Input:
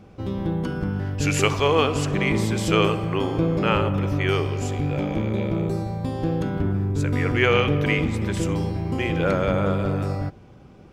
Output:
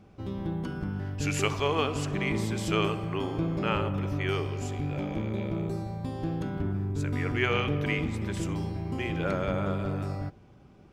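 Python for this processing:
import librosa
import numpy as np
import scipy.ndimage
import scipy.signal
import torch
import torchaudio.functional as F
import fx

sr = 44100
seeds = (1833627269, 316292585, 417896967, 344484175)

y = fx.notch(x, sr, hz=500.0, q=12.0)
y = y * librosa.db_to_amplitude(-7.0)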